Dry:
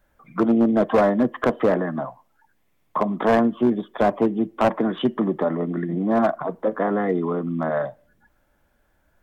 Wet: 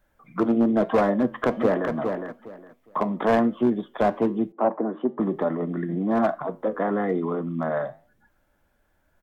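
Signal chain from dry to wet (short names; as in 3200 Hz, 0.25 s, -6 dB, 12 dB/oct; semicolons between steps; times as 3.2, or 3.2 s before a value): flange 1.1 Hz, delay 8 ms, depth 3.5 ms, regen -82%; 1.16–1.91 echo throw 0.41 s, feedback 20%, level -6 dB; 4.52–5.2 Butterworth band-pass 510 Hz, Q 0.6; gain +2 dB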